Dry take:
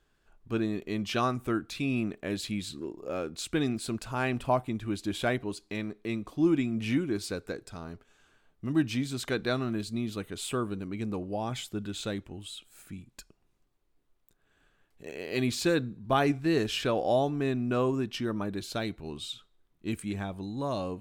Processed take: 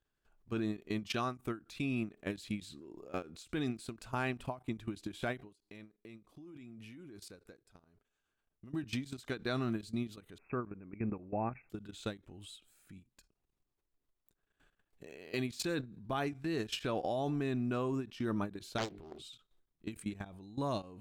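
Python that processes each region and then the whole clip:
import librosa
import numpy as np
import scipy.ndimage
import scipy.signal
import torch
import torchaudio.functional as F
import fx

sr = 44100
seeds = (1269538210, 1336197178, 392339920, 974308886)

y = fx.chain(x, sr, fx.peak_eq(hz=11000.0, db=6.0, octaves=0.29),
    fx.level_steps(step_db=20), at=(5.45, 8.73))
y = fx.chain(y, sr, fx.brickwall_lowpass(high_hz=2700.0),
    fx.env_lowpass(base_hz=1600.0, full_db=-27.5), at=(10.38, 11.7))
y = fx.chain(y, sr, fx.peak_eq(hz=380.0, db=9.0, octaves=0.37),
    fx.hum_notches(base_hz=50, count=9),
    fx.doppler_dist(depth_ms=0.99), at=(18.78, 19.22))
y = fx.dynamic_eq(y, sr, hz=520.0, q=2.5, threshold_db=-41.0, ratio=4.0, max_db=-3)
y = fx.level_steps(y, sr, step_db=17)
y = fx.end_taper(y, sr, db_per_s=240.0)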